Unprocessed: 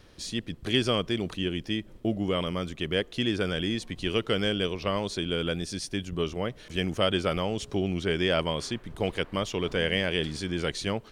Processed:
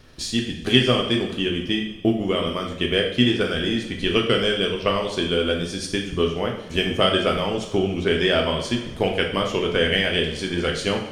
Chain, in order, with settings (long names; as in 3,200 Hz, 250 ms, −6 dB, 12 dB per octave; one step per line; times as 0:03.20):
transient designer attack +5 dB, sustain −6 dB
coupled-rooms reverb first 0.63 s, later 2.3 s, from −18 dB, DRR 0 dB
level +3 dB